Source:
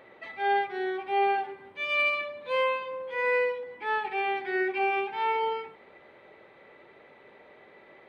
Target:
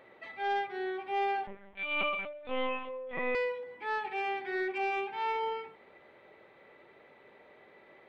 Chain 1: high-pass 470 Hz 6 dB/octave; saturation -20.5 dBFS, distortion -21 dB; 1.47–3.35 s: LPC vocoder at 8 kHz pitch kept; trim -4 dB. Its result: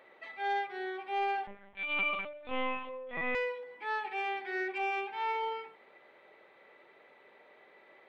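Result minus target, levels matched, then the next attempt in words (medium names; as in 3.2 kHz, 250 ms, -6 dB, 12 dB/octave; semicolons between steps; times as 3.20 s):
500 Hz band -2.5 dB
saturation -20.5 dBFS, distortion -19 dB; 1.47–3.35 s: LPC vocoder at 8 kHz pitch kept; trim -4 dB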